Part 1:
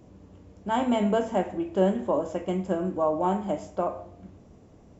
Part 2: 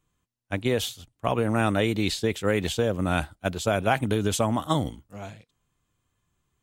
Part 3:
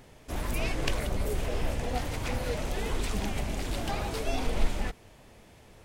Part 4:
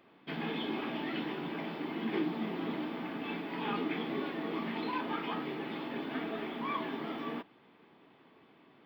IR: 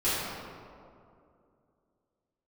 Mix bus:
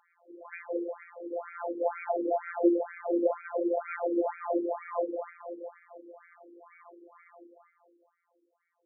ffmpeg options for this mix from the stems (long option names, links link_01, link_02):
-filter_complex "[0:a]equalizer=frequency=1100:width_type=o:width=2.9:gain=-9.5,adelay=1050,volume=-3dB,asplit=2[link_01][link_02];[link_02]volume=-3dB[link_03];[1:a]volume=-9.5dB,asplit=3[link_04][link_05][link_06];[link_05]volume=-9dB[link_07];[2:a]acompressor=threshold=-30dB:ratio=6,volume=-1dB[link_08];[3:a]equalizer=frequency=2200:width=3.2:gain=11.5,bandreject=frequency=2400:width=6.6,volume=-3.5dB,asplit=2[link_09][link_10];[link_10]volume=-18.5dB[link_11];[link_06]apad=whole_len=390609[link_12];[link_09][link_12]sidechaingate=range=-33dB:threshold=-48dB:ratio=16:detection=peak[link_13];[4:a]atrim=start_sample=2205[link_14];[link_03][link_07][link_11]amix=inputs=3:normalize=0[link_15];[link_15][link_14]afir=irnorm=-1:irlink=0[link_16];[link_01][link_04][link_08][link_13][link_16]amix=inputs=5:normalize=0,equalizer=frequency=580:width=5:gain=11,afftfilt=real='hypot(re,im)*cos(PI*b)':imag='0':win_size=1024:overlap=0.75,afftfilt=real='re*between(b*sr/1024,330*pow(1800/330,0.5+0.5*sin(2*PI*2.1*pts/sr))/1.41,330*pow(1800/330,0.5+0.5*sin(2*PI*2.1*pts/sr))*1.41)':imag='im*between(b*sr/1024,330*pow(1800/330,0.5+0.5*sin(2*PI*2.1*pts/sr))/1.41,330*pow(1800/330,0.5+0.5*sin(2*PI*2.1*pts/sr))*1.41)':win_size=1024:overlap=0.75"